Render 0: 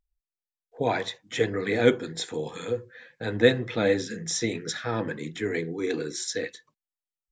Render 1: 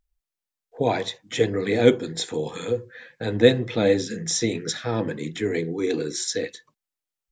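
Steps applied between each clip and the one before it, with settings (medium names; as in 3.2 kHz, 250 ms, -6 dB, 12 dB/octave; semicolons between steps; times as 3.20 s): dynamic bell 1.5 kHz, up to -7 dB, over -43 dBFS, Q 1.1; trim +4.5 dB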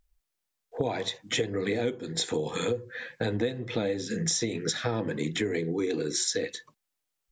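compression 16:1, threshold -30 dBFS, peak gain reduction 22 dB; trim +5 dB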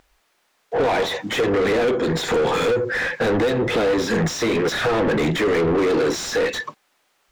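overdrive pedal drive 35 dB, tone 1.3 kHz, clips at -13 dBFS; trim +2 dB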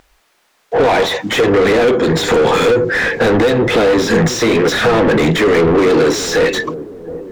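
feedback echo behind a low-pass 719 ms, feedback 43%, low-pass 550 Hz, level -12 dB; trim +7.5 dB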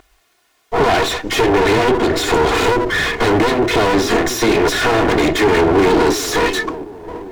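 comb filter that takes the minimum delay 2.8 ms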